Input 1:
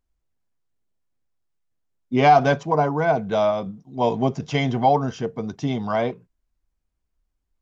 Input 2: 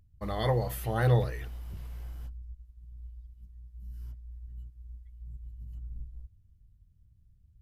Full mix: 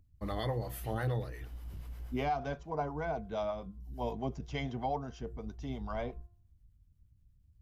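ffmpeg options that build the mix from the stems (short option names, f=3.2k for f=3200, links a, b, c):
-filter_complex "[0:a]volume=-13dB[a];[1:a]equalizer=f=280:w=4.3:g=7,volume=-1dB[b];[a][b]amix=inputs=2:normalize=0,acrossover=split=430[c][d];[c]aeval=exprs='val(0)*(1-0.5/2+0.5/2*cos(2*PI*8.4*n/s))':c=same[e];[d]aeval=exprs='val(0)*(1-0.5/2-0.5/2*cos(2*PI*8.4*n/s))':c=same[f];[e][f]amix=inputs=2:normalize=0,bandreject=f=349.6:t=h:w=4,bandreject=f=699.2:t=h:w=4,bandreject=f=1.0488k:t=h:w=4,bandreject=f=1.3984k:t=h:w=4,bandreject=f=1.748k:t=h:w=4,alimiter=limit=-24dB:level=0:latency=1:release=482"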